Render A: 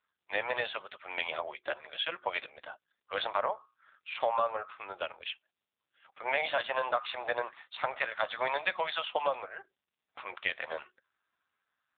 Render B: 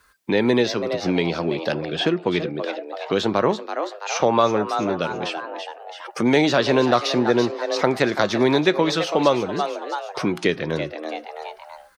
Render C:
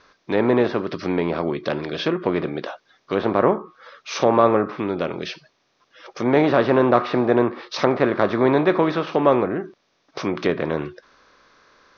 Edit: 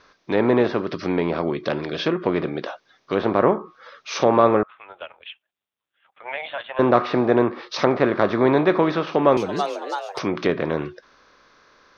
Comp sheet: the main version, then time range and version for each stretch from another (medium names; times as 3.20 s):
C
4.63–6.79 s: from A
9.37–10.19 s: from B